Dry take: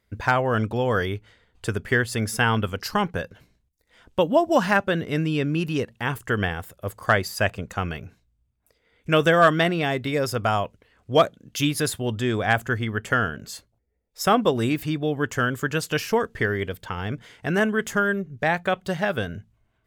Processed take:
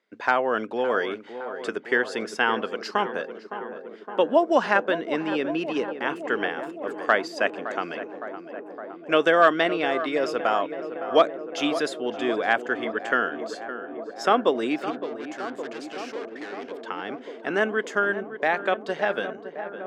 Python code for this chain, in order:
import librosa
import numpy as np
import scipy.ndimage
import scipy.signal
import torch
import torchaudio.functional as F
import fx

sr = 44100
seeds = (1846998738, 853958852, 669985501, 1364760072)

y = fx.law_mismatch(x, sr, coded='mu', at=(1.11, 1.68))
y = fx.tube_stage(y, sr, drive_db=34.0, bias=0.55, at=(14.9, 16.74))
y = scipy.signal.sosfilt(scipy.signal.butter(4, 270.0, 'highpass', fs=sr, output='sos'), y)
y = fx.air_absorb(y, sr, metres=110.0)
y = fx.echo_tape(y, sr, ms=563, feedback_pct=90, wet_db=-10, lp_hz=1400.0, drive_db=4.0, wow_cents=13)